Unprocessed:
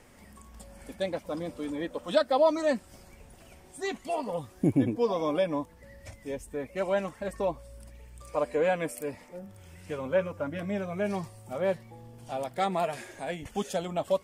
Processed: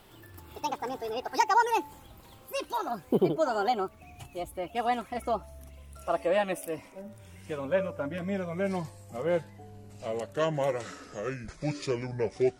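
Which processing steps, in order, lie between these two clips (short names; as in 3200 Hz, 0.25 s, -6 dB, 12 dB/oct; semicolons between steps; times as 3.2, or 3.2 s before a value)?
speed glide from 160% -> 66%; de-hum 290.6 Hz, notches 3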